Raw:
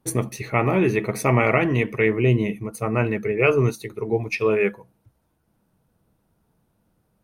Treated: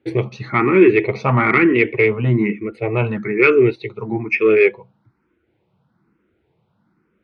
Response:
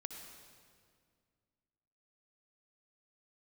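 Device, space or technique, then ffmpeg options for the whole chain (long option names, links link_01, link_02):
barber-pole phaser into a guitar amplifier: -filter_complex "[0:a]asplit=2[link_01][link_02];[link_02]afreqshift=1.1[link_03];[link_01][link_03]amix=inputs=2:normalize=1,asoftclip=type=tanh:threshold=-11.5dB,highpass=94,equalizer=frequency=360:width_type=q:width=4:gain=8,equalizer=frequency=660:width_type=q:width=4:gain=-5,equalizer=frequency=1400:width_type=q:width=4:gain=4,equalizer=frequency=2200:width_type=q:width=4:gain=7,lowpass=frequency=3900:width=0.5412,lowpass=frequency=3900:width=1.3066,volume=6dB"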